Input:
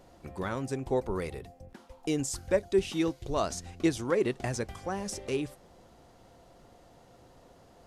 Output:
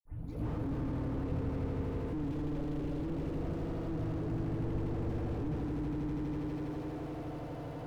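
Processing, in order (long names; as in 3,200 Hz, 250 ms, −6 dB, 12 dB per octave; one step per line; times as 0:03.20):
turntable start at the beginning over 0.58 s
reversed playback
downward compressor 6 to 1, threshold −39 dBFS, peak gain reduction 17.5 dB
reversed playback
high-pass filter 40 Hz 12 dB per octave
echo that builds up and dies away 81 ms, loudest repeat 5, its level −4 dB
feedback delay network reverb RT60 0.31 s, low-frequency decay 0.7×, high-frequency decay 0.75×, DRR −2.5 dB
bad sample-rate conversion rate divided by 4×, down none, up hold
bass and treble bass +5 dB, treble −12 dB
all-pass dispersion lows, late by 54 ms, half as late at 1,000 Hz
slew-rate limiting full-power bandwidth 3.9 Hz
level +2.5 dB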